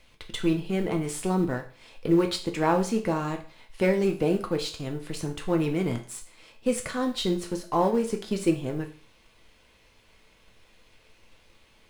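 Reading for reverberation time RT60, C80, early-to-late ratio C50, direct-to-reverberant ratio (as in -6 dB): 0.45 s, 16.0 dB, 11.5 dB, 3.0 dB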